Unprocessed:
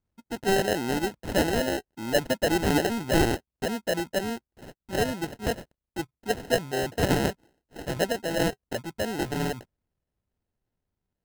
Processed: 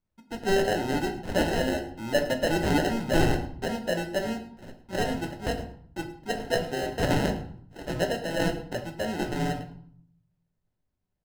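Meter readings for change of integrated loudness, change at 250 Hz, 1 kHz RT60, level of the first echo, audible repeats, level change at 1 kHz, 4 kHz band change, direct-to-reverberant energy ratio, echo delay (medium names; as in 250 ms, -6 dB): -1.0 dB, -0.5 dB, 0.65 s, -18.0 dB, 1, -0.5 dB, -1.5 dB, 4.0 dB, 107 ms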